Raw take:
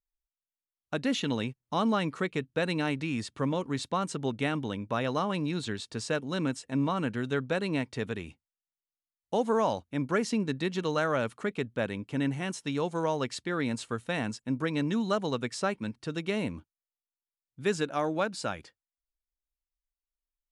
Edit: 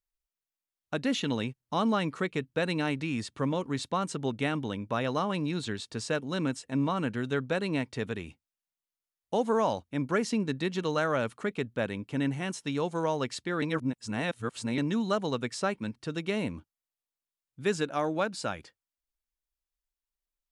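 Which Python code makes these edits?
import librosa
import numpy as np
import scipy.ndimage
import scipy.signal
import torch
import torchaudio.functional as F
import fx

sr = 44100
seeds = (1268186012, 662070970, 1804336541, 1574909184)

y = fx.edit(x, sr, fx.reverse_span(start_s=13.62, length_s=1.16), tone=tone)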